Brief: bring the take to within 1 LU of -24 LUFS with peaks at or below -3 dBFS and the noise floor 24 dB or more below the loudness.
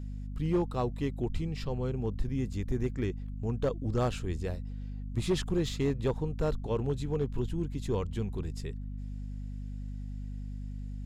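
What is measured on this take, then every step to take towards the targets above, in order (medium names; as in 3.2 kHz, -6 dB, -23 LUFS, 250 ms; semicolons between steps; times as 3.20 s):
clipped samples 0.6%; clipping level -21.5 dBFS; hum 50 Hz; highest harmonic 250 Hz; hum level -36 dBFS; loudness -34.0 LUFS; peak level -21.5 dBFS; loudness target -24.0 LUFS
-> clip repair -21.5 dBFS; de-hum 50 Hz, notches 5; trim +10 dB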